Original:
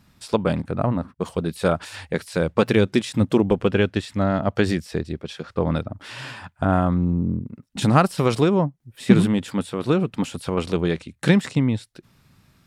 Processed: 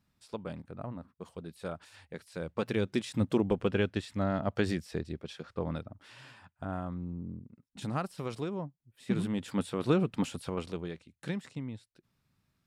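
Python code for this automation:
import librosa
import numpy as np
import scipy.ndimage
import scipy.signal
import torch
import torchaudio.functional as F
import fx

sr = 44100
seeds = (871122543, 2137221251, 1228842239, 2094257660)

y = fx.gain(x, sr, db=fx.line((2.17, -18.5), (3.14, -9.5), (5.31, -9.5), (6.24, -17.5), (9.06, -17.5), (9.6, -6.5), (10.27, -6.5), (10.98, -19.0)))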